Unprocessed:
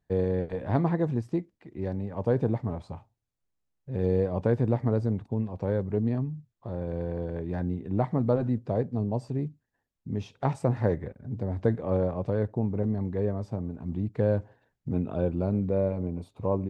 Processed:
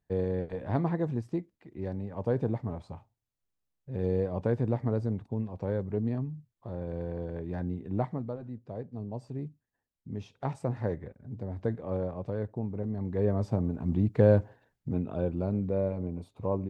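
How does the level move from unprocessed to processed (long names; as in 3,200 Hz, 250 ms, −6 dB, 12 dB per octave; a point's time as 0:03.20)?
0:08.02 −3.5 dB
0:08.38 −14.5 dB
0:09.47 −6 dB
0:12.89 −6 dB
0:13.41 +4 dB
0:14.38 +4 dB
0:15.02 −3 dB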